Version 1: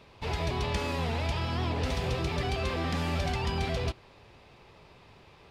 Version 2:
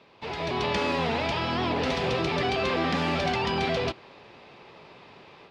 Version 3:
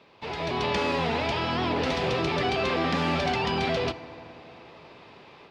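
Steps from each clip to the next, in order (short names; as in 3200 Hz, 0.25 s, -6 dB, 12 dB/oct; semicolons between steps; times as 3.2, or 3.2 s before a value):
AGC gain up to 7 dB; three-band isolator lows -19 dB, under 150 Hz, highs -17 dB, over 5700 Hz
FDN reverb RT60 3.6 s, high-frequency decay 0.35×, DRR 14 dB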